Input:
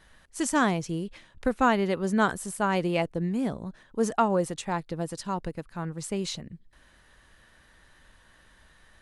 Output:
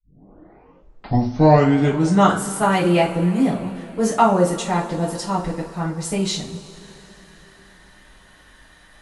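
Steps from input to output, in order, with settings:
turntable start at the beginning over 2.41 s
coupled-rooms reverb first 0.32 s, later 3.9 s, from −22 dB, DRR −6.5 dB
level +1.5 dB

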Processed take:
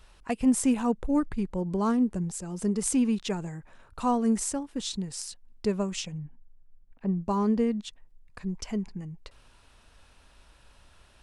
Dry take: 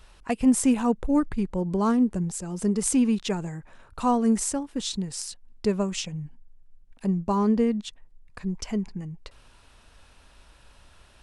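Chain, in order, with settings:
0:06.18–0:07.21: low-pass filter 2,000 Hz 12 dB per octave
level −3 dB

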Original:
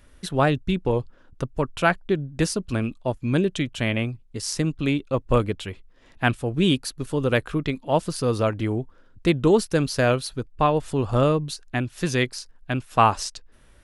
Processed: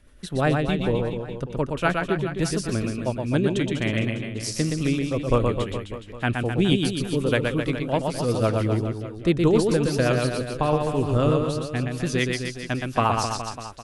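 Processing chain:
rotating-speaker cabinet horn 8 Hz
reverse bouncing-ball delay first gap 120 ms, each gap 1.15×, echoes 5

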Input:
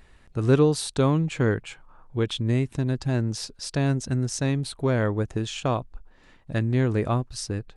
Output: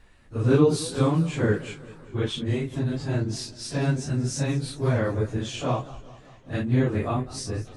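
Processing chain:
random phases in long frames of 100 ms
feedback echo with a swinging delay time 198 ms, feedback 60%, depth 156 cents, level −18 dB
level −1 dB

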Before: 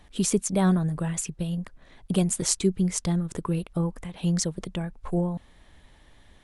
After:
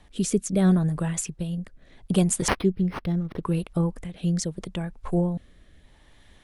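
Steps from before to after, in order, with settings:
rotating-speaker cabinet horn 0.75 Hz
0:02.48–0:03.43: linearly interpolated sample-rate reduction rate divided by 6×
level +2.5 dB

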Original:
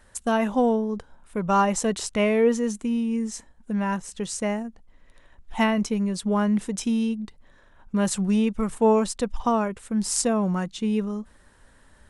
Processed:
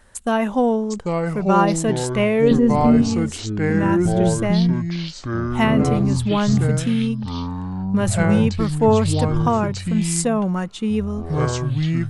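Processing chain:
0:02.51–0:03.02: spectral tilt −3.5 dB per octave
delay with pitch and tempo change per echo 703 ms, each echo −5 semitones, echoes 3
dynamic equaliser 5,700 Hz, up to −6 dB, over −48 dBFS, Q 3
level +3 dB

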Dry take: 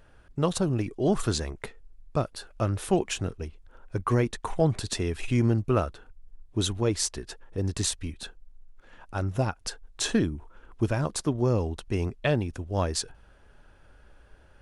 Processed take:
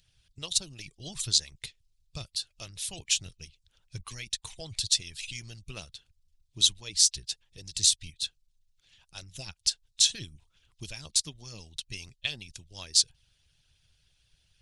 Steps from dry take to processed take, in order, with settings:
drawn EQ curve 150 Hz 0 dB, 240 Hz −18 dB, 1,400 Hz −14 dB, 2,400 Hz +4 dB, 3,700 Hz +14 dB, 5,400 Hz +14 dB, 11,000 Hz +8 dB
harmonic and percussive parts rebalanced harmonic −18 dB
level −4 dB

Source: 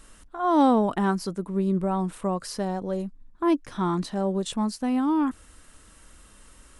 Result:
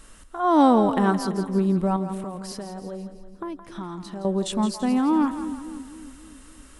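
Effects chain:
0:01.96–0:04.25: downward compressor 6 to 1, threshold −35 dBFS, peak gain reduction 16.5 dB
echo with a time of its own for lows and highs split 460 Hz, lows 277 ms, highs 167 ms, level −10.5 dB
level +2.5 dB

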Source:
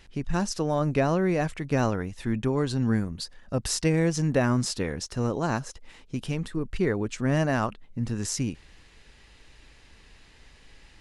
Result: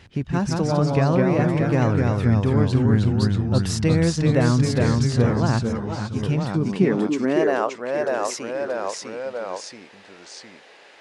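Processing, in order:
high-shelf EQ 6,000 Hz −10 dB
in parallel at +0.5 dB: downward compressor, threshold −34 dBFS, peak gain reduction 15 dB
on the sum: delay with pitch and tempo change per echo 151 ms, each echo −1 semitone, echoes 3
high-pass filter sweep 91 Hz → 530 Hz, 0:06.16–0:07.69
0:05.63–0:06.23: string-ensemble chorus

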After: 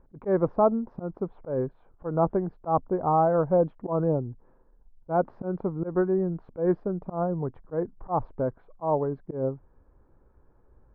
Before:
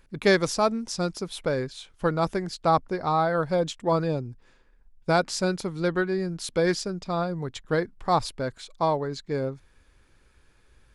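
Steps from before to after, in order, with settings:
low-pass filter 1,000 Hz 24 dB per octave
low-shelf EQ 240 Hz −3 dB
volume swells 141 ms
level +3.5 dB

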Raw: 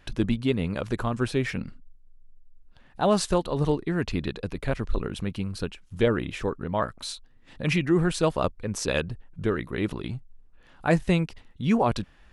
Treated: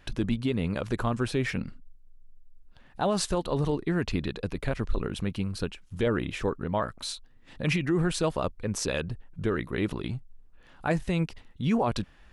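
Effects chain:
brickwall limiter −17 dBFS, peak gain reduction 7.5 dB

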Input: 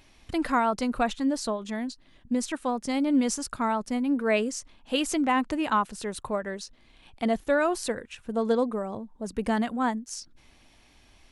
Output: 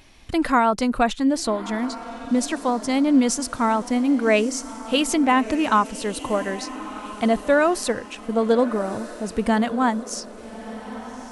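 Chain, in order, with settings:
feedback delay with all-pass diffusion 1,243 ms, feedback 42%, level −14 dB
level +6 dB

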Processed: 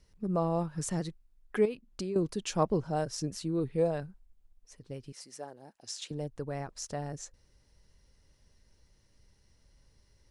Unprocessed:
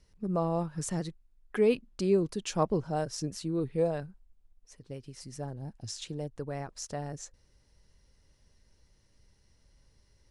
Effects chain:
0:01.65–0:02.16: downward compressor 5 to 1, threshold −34 dBFS, peak gain reduction 12.5 dB
0:05.12–0:06.11: high-pass filter 430 Hz 12 dB per octave

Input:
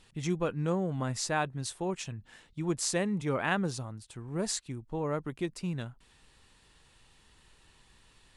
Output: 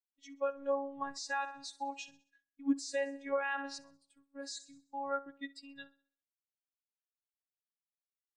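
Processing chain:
RIAA equalisation recording
phases set to zero 277 Hz
noise reduction from a noise print of the clip's start 9 dB
noise gate −55 dBFS, range −20 dB
high-frequency loss of the air 150 metres
repeating echo 65 ms, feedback 57%, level −15 dB
automatic gain control gain up to 9.5 dB
brickwall limiter −18 dBFS, peak gain reduction 11.5 dB
every bin expanded away from the loudest bin 1.5 to 1
level −2.5 dB

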